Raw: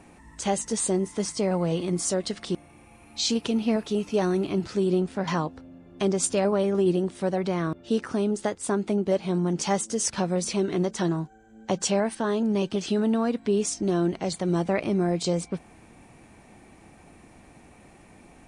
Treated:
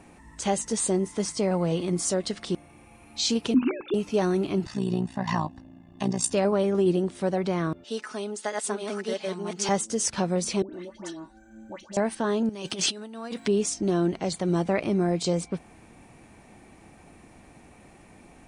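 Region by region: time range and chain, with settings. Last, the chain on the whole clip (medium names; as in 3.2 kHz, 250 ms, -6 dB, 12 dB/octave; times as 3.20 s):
3.54–3.94 s: formants replaced by sine waves + hum notches 60/120/180/240/300/360/420 Hz + comb 0.8 ms, depth 70%
4.65–6.32 s: high-pass 49 Hz + comb 1.1 ms, depth 82% + AM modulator 59 Hz, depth 65%
7.84–9.69 s: chunks repeated in reverse 681 ms, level -1 dB + high-pass 1.3 kHz 6 dB/octave + comb 4.7 ms, depth 67%
10.62–11.97 s: comb 3.4 ms, depth 98% + compression, threshold -37 dBFS + phase dispersion highs, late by 118 ms, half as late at 1.3 kHz
12.49–13.48 s: compressor with a negative ratio -29 dBFS, ratio -0.5 + tilt EQ +2.5 dB/octave
whole clip: none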